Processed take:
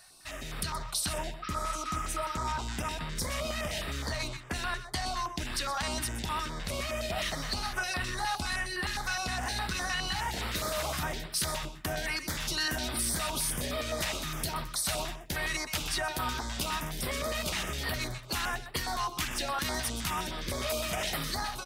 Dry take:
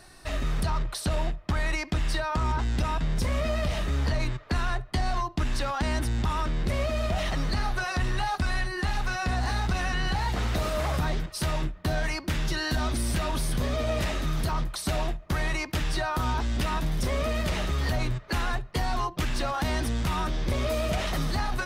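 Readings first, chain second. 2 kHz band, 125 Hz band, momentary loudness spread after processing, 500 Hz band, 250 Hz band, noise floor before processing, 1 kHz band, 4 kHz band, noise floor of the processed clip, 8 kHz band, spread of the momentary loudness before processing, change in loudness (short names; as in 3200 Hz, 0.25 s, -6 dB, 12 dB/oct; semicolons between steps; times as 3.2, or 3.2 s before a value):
-2.0 dB, -10.5 dB, 4 LU, -5.5 dB, -7.5 dB, -44 dBFS, -3.5 dB, +1.5 dB, -44 dBFS, +5.0 dB, 2 LU, -3.5 dB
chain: spectral repair 1.46–2.39, 1100–5800 Hz after; tilt +2.5 dB/oct; AGC gain up to 5 dB; on a send: echo 0.125 s -11 dB; on the sum: stepped notch 9.7 Hz 330–6400 Hz; gain -7 dB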